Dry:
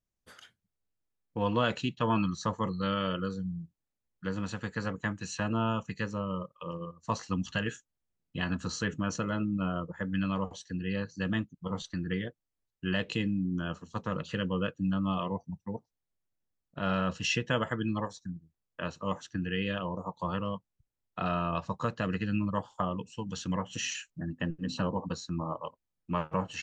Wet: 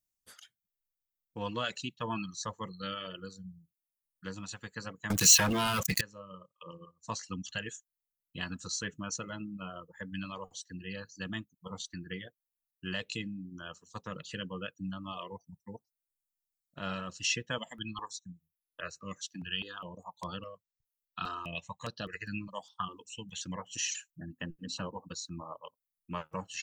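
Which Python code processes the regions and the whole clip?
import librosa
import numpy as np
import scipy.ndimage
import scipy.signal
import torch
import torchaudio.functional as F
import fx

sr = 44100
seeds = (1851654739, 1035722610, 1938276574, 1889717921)

y = fx.chain(x, sr, fx.leveller(passes=5),
    fx.env_flatten(amount_pct=50), at=(5.1, 6.01))
y = fx.chain(y, sr, fx.peak_eq(hz=3000.0, db=8.0, octaves=2.6),
    fx.phaser_held(hz=4.9, low_hz=390.0, high_hz=7300.0), at=(17.58, 23.41))
y = F.preemphasis(torch.from_numpy(y), 0.8).numpy()
y = fx.dereverb_blind(y, sr, rt60_s=1.8)
y = y * librosa.db_to_amplitude(6.5)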